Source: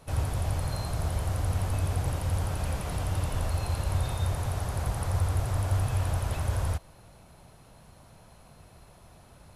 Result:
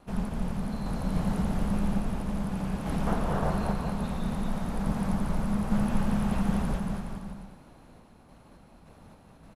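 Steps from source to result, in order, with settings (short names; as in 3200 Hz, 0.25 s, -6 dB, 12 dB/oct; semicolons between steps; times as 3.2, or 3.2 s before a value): 3.06–3.5 band shelf 750 Hz +9.5 dB 2.6 oct; ring modulator 110 Hz; high shelf 3800 Hz -10 dB; random-step tremolo; bouncing-ball echo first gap 0.23 s, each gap 0.8×, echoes 5; gain +4 dB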